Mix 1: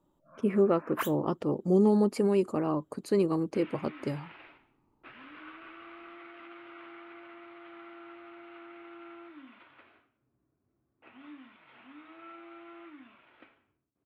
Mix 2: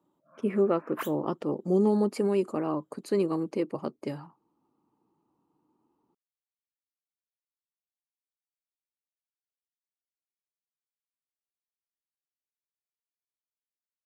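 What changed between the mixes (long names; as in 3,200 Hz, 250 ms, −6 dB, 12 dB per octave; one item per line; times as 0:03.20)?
first sound −3.0 dB
second sound: muted
master: add high-pass filter 160 Hz 12 dB per octave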